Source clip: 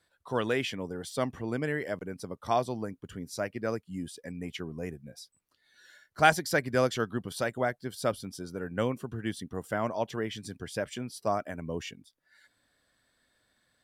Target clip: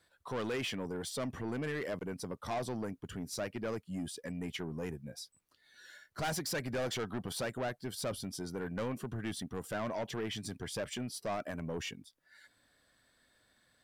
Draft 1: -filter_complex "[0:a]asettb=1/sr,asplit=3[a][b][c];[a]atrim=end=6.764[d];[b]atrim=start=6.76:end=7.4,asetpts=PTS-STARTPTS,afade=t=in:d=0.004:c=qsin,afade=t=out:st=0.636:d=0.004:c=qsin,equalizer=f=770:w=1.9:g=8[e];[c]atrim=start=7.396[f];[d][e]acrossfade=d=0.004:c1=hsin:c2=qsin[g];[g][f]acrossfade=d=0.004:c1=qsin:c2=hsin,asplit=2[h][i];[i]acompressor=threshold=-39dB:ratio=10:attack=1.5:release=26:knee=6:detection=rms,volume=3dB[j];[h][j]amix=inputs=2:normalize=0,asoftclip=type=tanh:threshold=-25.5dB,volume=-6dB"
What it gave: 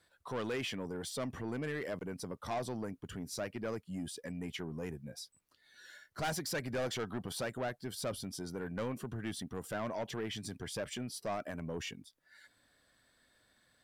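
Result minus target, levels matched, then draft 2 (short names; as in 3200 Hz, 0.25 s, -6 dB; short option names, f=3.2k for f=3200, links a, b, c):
compressor: peak gain reduction +7 dB
-filter_complex "[0:a]asettb=1/sr,asplit=3[a][b][c];[a]atrim=end=6.764[d];[b]atrim=start=6.76:end=7.4,asetpts=PTS-STARTPTS,afade=t=in:d=0.004:c=qsin,afade=t=out:st=0.636:d=0.004:c=qsin,equalizer=f=770:w=1.9:g=8[e];[c]atrim=start=7.396[f];[d][e]acrossfade=d=0.004:c1=hsin:c2=qsin[g];[g][f]acrossfade=d=0.004:c1=qsin:c2=hsin,asplit=2[h][i];[i]acompressor=threshold=-31dB:ratio=10:attack=1.5:release=26:knee=6:detection=rms,volume=3dB[j];[h][j]amix=inputs=2:normalize=0,asoftclip=type=tanh:threshold=-25.5dB,volume=-6dB"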